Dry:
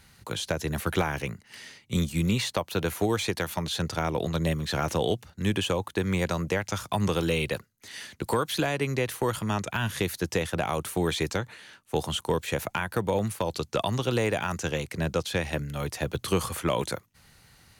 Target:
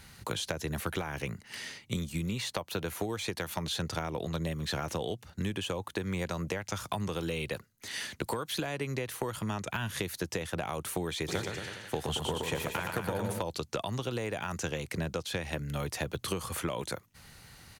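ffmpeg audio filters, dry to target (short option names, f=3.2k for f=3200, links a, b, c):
-filter_complex "[0:a]acompressor=threshold=-34dB:ratio=10,asplit=3[a][b][c];[a]afade=t=out:st=11.27:d=0.02[d];[b]aecho=1:1:120|228|325.2|412.7|491.4:0.631|0.398|0.251|0.158|0.1,afade=t=in:st=11.27:d=0.02,afade=t=out:st=13.41:d=0.02[e];[c]afade=t=in:st=13.41:d=0.02[f];[d][e][f]amix=inputs=3:normalize=0,volume=3.5dB"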